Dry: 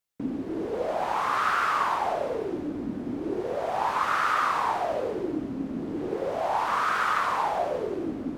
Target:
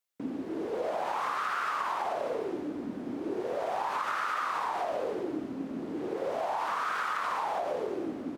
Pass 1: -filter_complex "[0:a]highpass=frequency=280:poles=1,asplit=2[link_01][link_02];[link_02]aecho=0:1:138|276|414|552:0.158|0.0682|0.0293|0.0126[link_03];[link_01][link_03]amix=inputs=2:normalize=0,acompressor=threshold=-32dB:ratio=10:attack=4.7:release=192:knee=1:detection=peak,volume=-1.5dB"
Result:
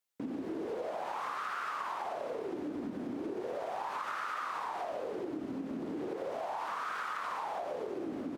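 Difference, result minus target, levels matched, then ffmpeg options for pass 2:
downward compressor: peak gain reduction +6 dB
-filter_complex "[0:a]highpass=frequency=280:poles=1,asplit=2[link_01][link_02];[link_02]aecho=0:1:138|276|414|552:0.158|0.0682|0.0293|0.0126[link_03];[link_01][link_03]amix=inputs=2:normalize=0,acompressor=threshold=-25.5dB:ratio=10:attack=4.7:release=192:knee=1:detection=peak,volume=-1.5dB"

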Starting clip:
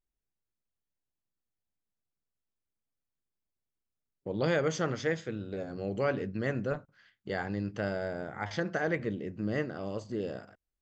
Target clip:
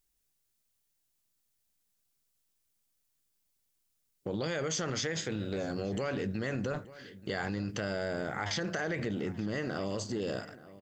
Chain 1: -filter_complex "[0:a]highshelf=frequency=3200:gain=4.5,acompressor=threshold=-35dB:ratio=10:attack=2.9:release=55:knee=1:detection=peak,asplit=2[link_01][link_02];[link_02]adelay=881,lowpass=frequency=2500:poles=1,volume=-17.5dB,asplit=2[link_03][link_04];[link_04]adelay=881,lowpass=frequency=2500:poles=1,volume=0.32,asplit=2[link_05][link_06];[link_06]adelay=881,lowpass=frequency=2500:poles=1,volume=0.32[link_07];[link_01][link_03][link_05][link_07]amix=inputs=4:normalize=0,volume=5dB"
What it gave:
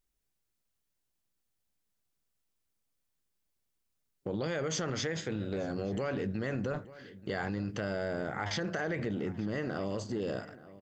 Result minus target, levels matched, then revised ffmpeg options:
8,000 Hz band −3.0 dB
-filter_complex "[0:a]highshelf=frequency=3200:gain=13,acompressor=threshold=-35dB:ratio=10:attack=2.9:release=55:knee=1:detection=peak,asplit=2[link_01][link_02];[link_02]adelay=881,lowpass=frequency=2500:poles=1,volume=-17.5dB,asplit=2[link_03][link_04];[link_04]adelay=881,lowpass=frequency=2500:poles=1,volume=0.32,asplit=2[link_05][link_06];[link_06]adelay=881,lowpass=frequency=2500:poles=1,volume=0.32[link_07];[link_01][link_03][link_05][link_07]amix=inputs=4:normalize=0,volume=5dB"

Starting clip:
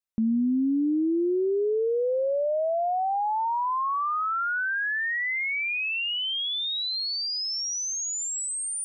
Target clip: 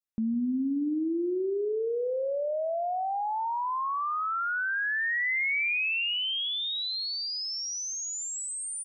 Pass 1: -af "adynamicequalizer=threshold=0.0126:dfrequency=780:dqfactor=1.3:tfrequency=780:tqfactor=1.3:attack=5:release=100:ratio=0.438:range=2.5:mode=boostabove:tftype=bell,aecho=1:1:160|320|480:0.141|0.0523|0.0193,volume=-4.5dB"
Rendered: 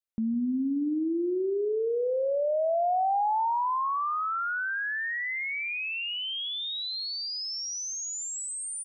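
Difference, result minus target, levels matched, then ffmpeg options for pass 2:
1,000 Hz band +3.0 dB
-af "adynamicequalizer=threshold=0.0126:dfrequency=2300:dqfactor=1.3:tfrequency=2300:tqfactor=1.3:attack=5:release=100:ratio=0.438:range=2.5:mode=boostabove:tftype=bell,aecho=1:1:160|320|480:0.141|0.0523|0.0193,volume=-4.5dB"

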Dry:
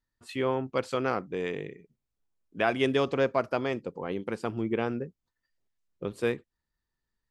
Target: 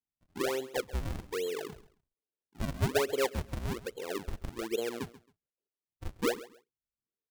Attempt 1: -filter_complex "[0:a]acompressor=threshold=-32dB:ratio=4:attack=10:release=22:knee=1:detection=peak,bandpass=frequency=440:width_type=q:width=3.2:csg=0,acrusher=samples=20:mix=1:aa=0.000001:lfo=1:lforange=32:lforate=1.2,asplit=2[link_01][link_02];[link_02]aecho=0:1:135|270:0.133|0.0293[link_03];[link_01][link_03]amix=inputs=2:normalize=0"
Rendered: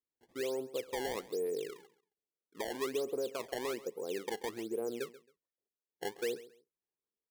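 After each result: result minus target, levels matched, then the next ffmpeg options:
downward compressor: peak gain reduction +8.5 dB; sample-and-hold swept by an LFO: distortion −12 dB
-filter_complex "[0:a]bandpass=frequency=440:width_type=q:width=3.2:csg=0,acrusher=samples=20:mix=1:aa=0.000001:lfo=1:lforange=32:lforate=1.2,asplit=2[link_01][link_02];[link_02]aecho=0:1:135|270:0.133|0.0293[link_03];[link_01][link_03]amix=inputs=2:normalize=0"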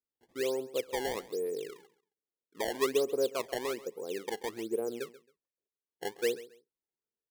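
sample-and-hold swept by an LFO: distortion −12 dB
-filter_complex "[0:a]bandpass=frequency=440:width_type=q:width=3.2:csg=0,acrusher=samples=59:mix=1:aa=0.000001:lfo=1:lforange=94.4:lforate=1.2,asplit=2[link_01][link_02];[link_02]aecho=0:1:135|270:0.133|0.0293[link_03];[link_01][link_03]amix=inputs=2:normalize=0"

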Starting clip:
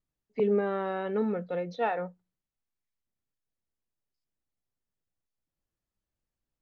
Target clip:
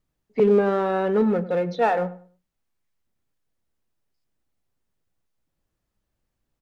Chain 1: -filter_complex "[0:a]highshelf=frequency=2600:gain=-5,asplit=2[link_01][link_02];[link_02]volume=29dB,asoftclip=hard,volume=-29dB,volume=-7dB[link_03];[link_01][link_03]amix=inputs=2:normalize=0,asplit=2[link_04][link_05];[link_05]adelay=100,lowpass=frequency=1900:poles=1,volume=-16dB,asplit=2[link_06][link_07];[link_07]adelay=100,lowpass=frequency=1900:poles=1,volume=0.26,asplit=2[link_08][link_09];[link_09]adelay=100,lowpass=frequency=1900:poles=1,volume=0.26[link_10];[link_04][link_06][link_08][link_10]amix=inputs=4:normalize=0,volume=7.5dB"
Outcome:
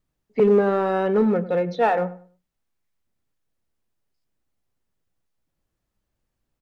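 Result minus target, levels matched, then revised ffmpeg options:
gain into a clipping stage and back: distortion −4 dB
-filter_complex "[0:a]highshelf=frequency=2600:gain=-5,asplit=2[link_01][link_02];[link_02]volume=36.5dB,asoftclip=hard,volume=-36.5dB,volume=-7dB[link_03];[link_01][link_03]amix=inputs=2:normalize=0,asplit=2[link_04][link_05];[link_05]adelay=100,lowpass=frequency=1900:poles=1,volume=-16dB,asplit=2[link_06][link_07];[link_07]adelay=100,lowpass=frequency=1900:poles=1,volume=0.26,asplit=2[link_08][link_09];[link_09]adelay=100,lowpass=frequency=1900:poles=1,volume=0.26[link_10];[link_04][link_06][link_08][link_10]amix=inputs=4:normalize=0,volume=7.5dB"

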